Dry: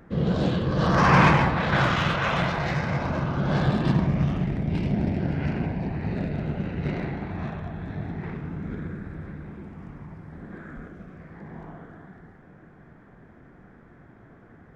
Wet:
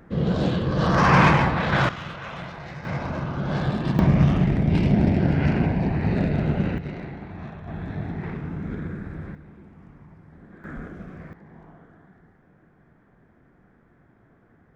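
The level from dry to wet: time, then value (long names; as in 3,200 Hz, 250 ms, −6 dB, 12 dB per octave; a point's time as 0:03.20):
+1 dB
from 0:01.89 −11 dB
from 0:02.85 −2 dB
from 0:03.99 +6 dB
from 0:06.78 −5 dB
from 0:07.68 +2 dB
from 0:09.35 −7 dB
from 0:10.64 +4 dB
from 0:11.33 −7 dB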